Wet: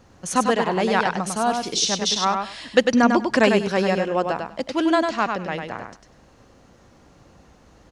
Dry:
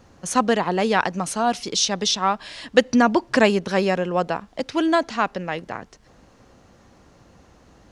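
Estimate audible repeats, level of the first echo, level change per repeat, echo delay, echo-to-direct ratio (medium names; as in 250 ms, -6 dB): 2, -5.0 dB, -15.5 dB, 99 ms, -5.0 dB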